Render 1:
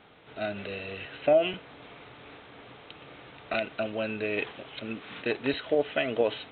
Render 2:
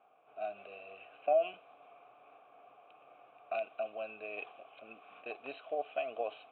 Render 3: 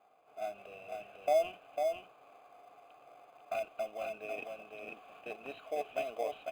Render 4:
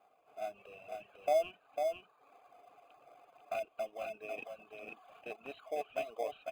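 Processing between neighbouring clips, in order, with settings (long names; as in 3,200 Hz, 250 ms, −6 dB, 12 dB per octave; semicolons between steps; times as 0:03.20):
low-pass that shuts in the quiet parts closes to 2,100 Hz, open at −20.5 dBFS; formant filter a
single-tap delay 499 ms −4.5 dB; in parallel at −12 dB: sample-rate reduction 2,800 Hz, jitter 0%; on the sum: level −1.5 dB
reverb reduction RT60 0.75 s; level −1 dB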